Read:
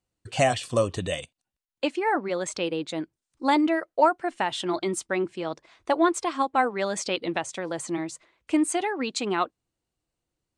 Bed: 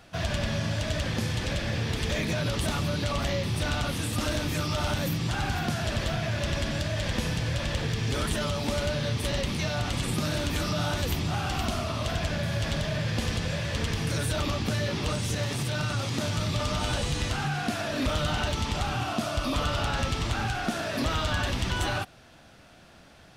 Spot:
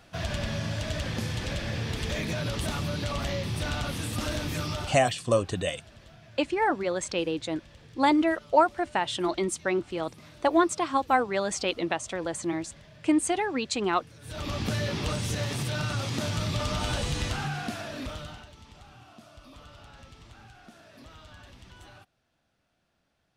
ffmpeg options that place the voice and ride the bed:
-filter_complex "[0:a]adelay=4550,volume=-0.5dB[a];[1:a]volume=19.5dB,afade=t=out:st=4.69:d=0.33:silence=0.0944061,afade=t=in:st=14.21:d=0.42:silence=0.0794328,afade=t=out:st=17.25:d=1.22:silence=0.0891251[b];[a][b]amix=inputs=2:normalize=0"

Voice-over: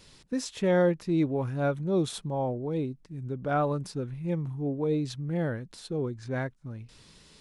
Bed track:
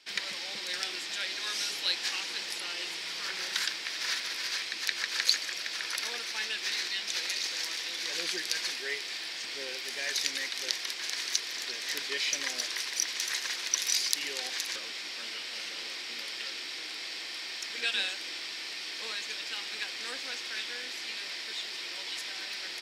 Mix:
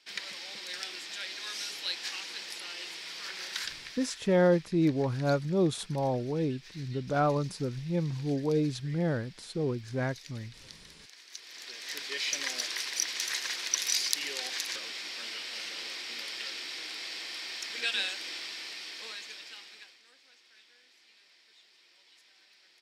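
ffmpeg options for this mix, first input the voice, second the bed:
-filter_complex "[0:a]adelay=3650,volume=0dB[a];[1:a]volume=14dB,afade=t=out:st=3.58:d=0.64:silence=0.188365,afade=t=in:st=11.28:d=1.14:silence=0.11885,afade=t=out:st=18.34:d=1.68:silence=0.0707946[b];[a][b]amix=inputs=2:normalize=0"

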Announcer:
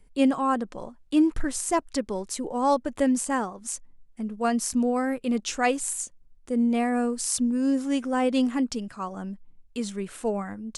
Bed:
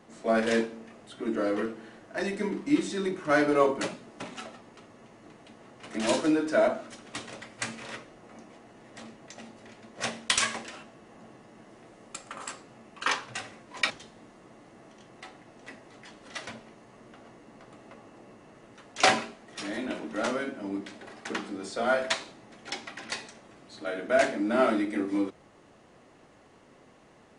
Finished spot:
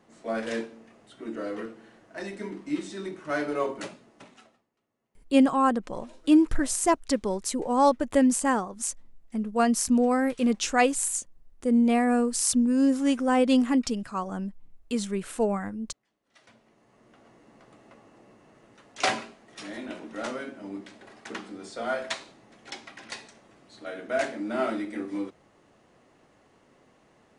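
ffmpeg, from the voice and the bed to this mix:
-filter_complex "[0:a]adelay=5150,volume=2dB[a];[1:a]volume=19.5dB,afade=t=out:st=3.83:d=0.85:silence=0.0668344,afade=t=in:st=16.26:d=1.19:silence=0.0562341[b];[a][b]amix=inputs=2:normalize=0"

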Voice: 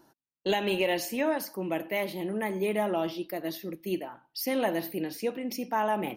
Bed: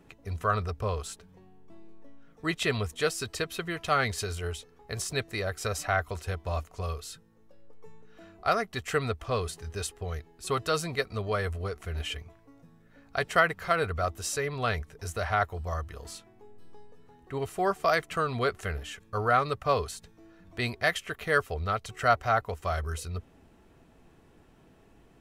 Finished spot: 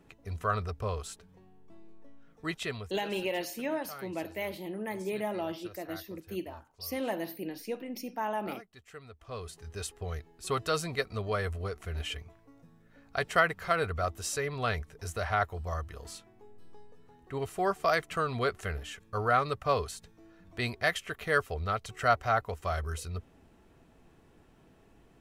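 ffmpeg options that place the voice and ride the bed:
-filter_complex "[0:a]adelay=2450,volume=-5.5dB[a];[1:a]volume=15dB,afade=t=out:st=2.32:d=0.72:silence=0.141254,afade=t=in:st=9.11:d=0.94:silence=0.125893[b];[a][b]amix=inputs=2:normalize=0"

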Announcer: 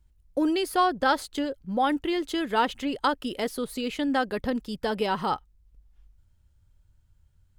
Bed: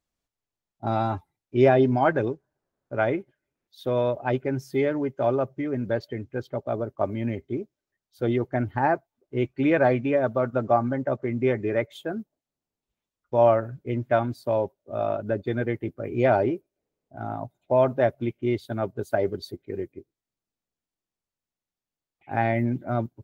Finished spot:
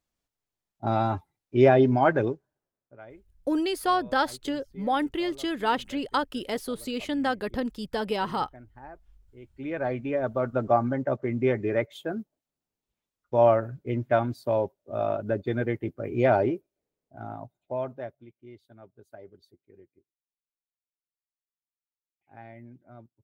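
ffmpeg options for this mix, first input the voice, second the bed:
-filter_complex "[0:a]adelay=3100,volume=-1.5dB[a];[1:a]volume=22dB,afade=t=out:st=2.27:d=0.7:silence=0.0707946,afade=t=in:st=9.42:d=1.24:silence=0.0794328,afade=t=out:st=16.43:d=1.82:silence=0.0841395[b];[a][b]amix=inputs=2:normalize=0"

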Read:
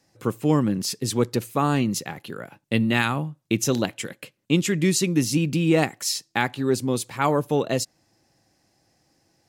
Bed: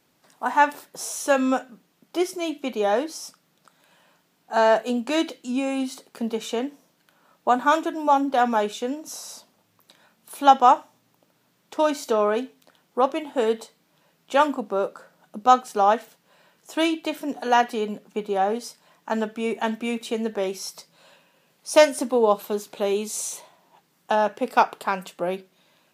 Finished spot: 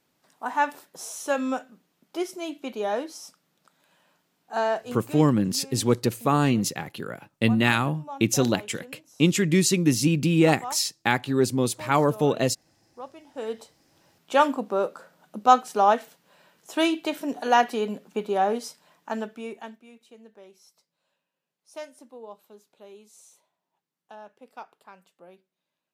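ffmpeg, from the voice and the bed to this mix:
-filter_complex "[0:a]adelay=4700,volume=0.5dB[a];[1:a]volume=13.5dB,afade=t=out:st=4.54:d=0.68:silence=0.199526,afade=t=in:st=13.22:d=0.97:silence=0.112202,afade=t=out:st=18.62:d=1.19:silence=0.0707946[b];[a][b]amix=inputs=2:normalize=0"

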